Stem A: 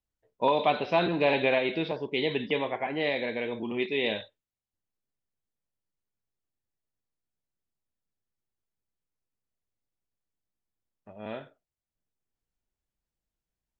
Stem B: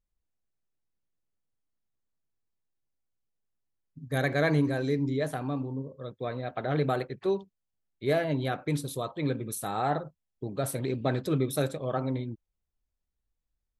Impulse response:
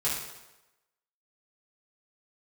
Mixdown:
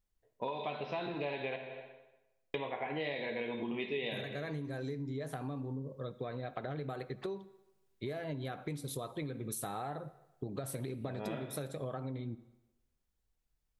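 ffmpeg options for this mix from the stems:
-filter_complex "[0:a]dynaudnorm=f=230:g=21:m=11dB,volume=-6.5dB,asplit=3[a][b][c];[a]atrim=end=1.56,asetpts=PTS-STARTPTS,afade=t=out:st=1.556:d=0.004:c=hsin[d];[b]atrim=start=1.56:end=2.54,asetpts=PTS-STARTPTS,volume=0[e];[c]atrim=start=2.54,asetpts=PTS-STARTPTS,afade=t=in:d=0.004:c=hsin[f];[d][e][f]concat=n=3:v=0:a=1,asplit=2[g][h];[h]volume=-10dB[i];[1:a]acompressor=threshold=-33dB:ratio=6,volume=0.5dB,asplit=2[j][k];[k]volume=-22dB[l];[2:a]atrim=start_sample=2205[m];[i][l]amix=inputs=2:normalize=0[n];[n][m]afir=irnorm=-1:irlink=0[o];[g][j][o]amix=inputs=3:normalize=0,acompressor=threshold=-36dB:ratio=5"

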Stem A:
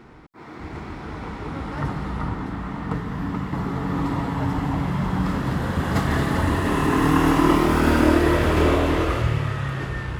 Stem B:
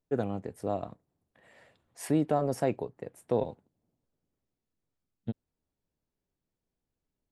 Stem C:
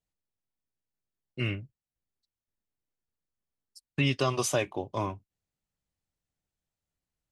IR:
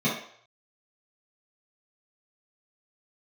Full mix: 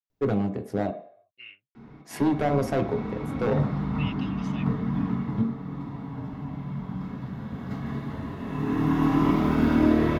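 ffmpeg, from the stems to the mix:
-filter_complex "[0:a]adelay=1750,volume=-0.5dB,afade=t=out:st=5.05:d=0.49:silence=0.298538,afade=t=in:st=8.44:d=0.75:silence=0.375837,asplit=2[a][b];[b]volume=-11dB[c];[1:a]acontrast=77,volume=18.5dB,asoftclip=hard,volume=-18.5dB,adelay=100,volume=-1.5dB,asplit=3[d][e][f];[d]atrim=end=0.91,asetpts=PTS-STARTPTS,afade=t=out:st=0.906:d=0.004:c=hsin[g];[e]atrim=start=0.91:end=2.04,asetpts=PTS-STARTPTS,volume=0[h];[f]atrim=start=2.04,asetpts=PTS-STARTPTS,afade=t=in:d=0.004:c=hsin[i];[g][h][i]concat=n=3:v=0:a=1,asplit=2[j][k];[k]volume=-19dB[l];[2:a]bandpass=f=2.8k:t=q:w=2.6:csg=0,volume=-7dB[m];[3:a]atrim=start_sample=2205[n];[c][l]amix=inputs=2:normalize=0[o];[o][n]afir=irnorm=-1:irlink=0[p];[a][j][m][p]amix=inputs=4:normalize=0,equalizer=f=8.8k:t=o:w=0.59:g=-10"

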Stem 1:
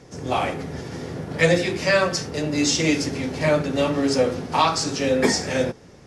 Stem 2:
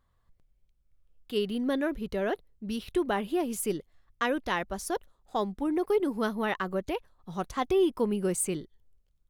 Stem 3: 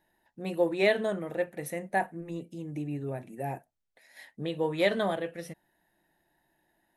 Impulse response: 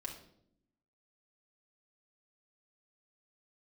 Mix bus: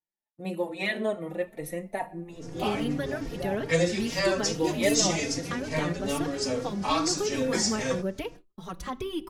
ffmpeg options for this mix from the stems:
-filter_complex "[0:a]adynamicequalizer=threshold=0.00891:dfrequency=6800:dqfactor=1.2:tfrequency=6800:tqfactor=1.2:attack=5:release=100:ratio=0.375:range=4:mode=boostabove:tftype=bell,adelay=2300,volume=-5.5dB[a];[1:a]acontrast=31,equalizer=f=760:w=1.4:g=-6,acrossover=split=180|650[b][c][d];[b]acompressor=threshold=-36dB:ratio=4[e];[c]acompressor=threshold=-33dB:ratio=4[f];[d]acompressor=threshold=-36dB:ratio=4[g];[e][f][g]amix=inputs=3:normalize=0,adelay=1300,volume=0.5dB,asplit=2[h][i];[i]volume=-10.5dB[j];[2:a]bandreject=f=1.6k:w=6.1,volume=1dB,asplit=2[k][l];[l]volume=-8.5dB[m];[3:a]atrim=start_sample=2205[n];[j][m]amix=inputs=2:normalize=0[o];[o][n]afir=irnorm=-1:irlink=0[p];[a][h][k][p]amix=inputs=4:normalize=0,agate=range=-28dB:threshold=-43dB:ratio=16:detection=peak,asplit=2[q][r];[r]adelay=3.8,afreqshift=2.4[s];[q][s]amix=inputs=2:normalize=1"

